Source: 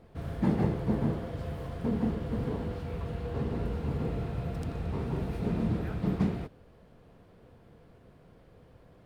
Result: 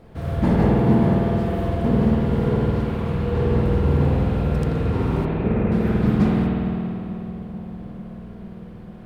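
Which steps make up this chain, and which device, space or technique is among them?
5.25–5.72 elliptic low-pass 2600 Hz; dub delay into a spring reverb (darkening echo 0.445 s, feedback 76%, low-pass 1200 Hz, level -14.5 dB; spring tank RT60 2.7 s, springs 50 ms, chirp 40 ms, DRR -3 dB); gain +7.5 dB

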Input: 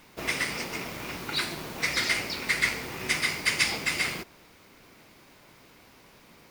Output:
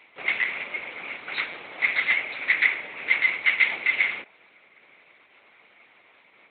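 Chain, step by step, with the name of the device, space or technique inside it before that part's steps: talking toy (LPC vocoder at 8 kHz; HPF 370 Hz 12 dB/oct; bell 2200 Hz +10 dB 0.49 oct); gain -1.5 dB

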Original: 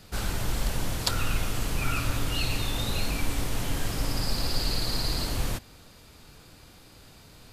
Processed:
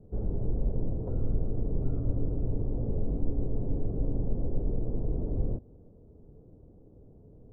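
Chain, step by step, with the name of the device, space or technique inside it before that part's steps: under water (LPF 530 Hz 24 dB/oct; bell 430 Hz +5 dB 0.25 oct)

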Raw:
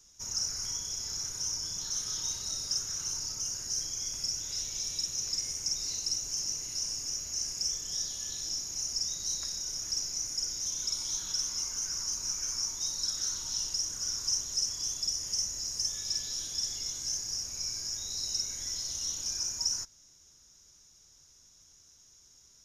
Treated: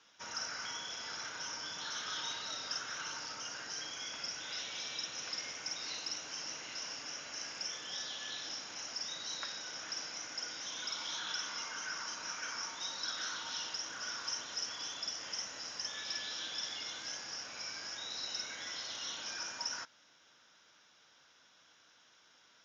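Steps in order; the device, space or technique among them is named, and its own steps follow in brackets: phone earpiece (speaker cabinet 380–3500 Hz, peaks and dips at 390 Hz -8 dB, 1500 Hz +6 dB, 3200 Hz +3 dB); gain +8 dB

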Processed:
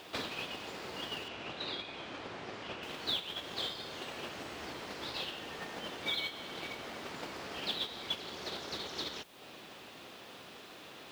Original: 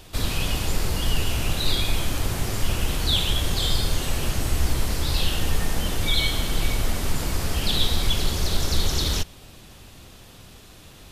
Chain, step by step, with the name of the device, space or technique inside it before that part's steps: baby monitor (BPF 320–3700 Hz; compressor 6:1, threshold -43 dBFS, peak gain reduction 19.5 dB; white noise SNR 21 dB; gate -43 dBFS, range -9 dB); 1.28–2.83 air absorption 90 m; gain +10 dB

